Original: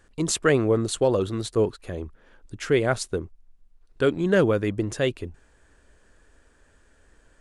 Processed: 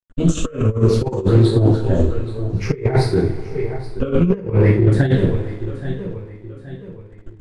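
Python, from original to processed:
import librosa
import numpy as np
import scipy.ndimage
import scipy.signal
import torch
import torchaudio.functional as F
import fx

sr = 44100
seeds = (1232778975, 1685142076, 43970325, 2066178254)

p1 = fx.spec_ripple(x, sr, per_octave=0.83, drift_hz=-0.57, depth_db=15)
p2 = 10.0 ** (-11.5 / 20.0) * np.tanh(p1 / 10.0 ** (-11.5 / 20.0))
p3 = p1 + F.gain(torch.from_numpy(p2), -8.5).numpy()
p4 = fx.rev_double_slope(p3, sr, seeds[0], early_s=0.51, late_s=3.4, knee_db=-21, drr_db=-7.0)
p5 = np.sign(p4) * np.maximum(np.abs(p4) - 10.0 ** (-39.0 / 20.0), 0.0)
p6 = p5 + fx.echo_feedback(p5, sr, ms=824, feedback_pct=41, wet_db=-17.0, dry=0)
p7 = fx.over_compress(p6, sr, threshold_db=-14.0, ratio=-0.5)
p8 = fx.riaa(p7, sr, side='playback')
p9 = fx.doppler_dist(p8, sr, depth_ms=0.2)
y = F.gain(torch.from_numpy(p9), -7.0).numpy()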